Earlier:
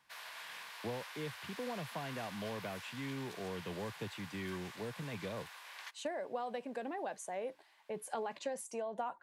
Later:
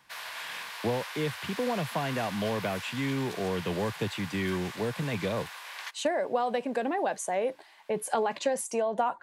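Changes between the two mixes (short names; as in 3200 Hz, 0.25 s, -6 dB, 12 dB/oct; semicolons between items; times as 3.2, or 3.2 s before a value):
speech +11.5 dB; background +9.0 dB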